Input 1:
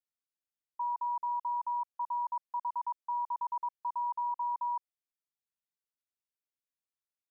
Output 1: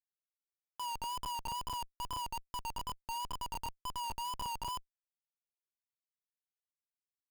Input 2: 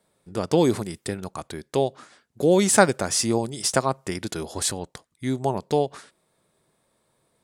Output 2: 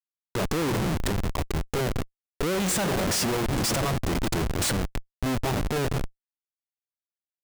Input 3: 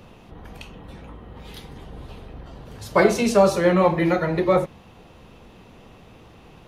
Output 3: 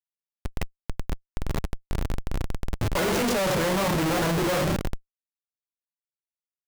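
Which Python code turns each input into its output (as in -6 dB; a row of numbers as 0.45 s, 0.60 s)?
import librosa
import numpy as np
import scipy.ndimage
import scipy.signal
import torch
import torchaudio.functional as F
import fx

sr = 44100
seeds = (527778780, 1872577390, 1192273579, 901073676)

y = fx.room_shoebox(x, sr, seeds[0], volume_m3=2200.0, walls='mixed', distance_m=0.45)
y = fx.wow_flutter(y, sr, seeds[1], rate_hz=2.1, depth_cents=72.0)
y = fx.schmitt(y, sr, flips_db=-31.0)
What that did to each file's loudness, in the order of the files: -5.0 LU, -3.5 LU, -7.5 LU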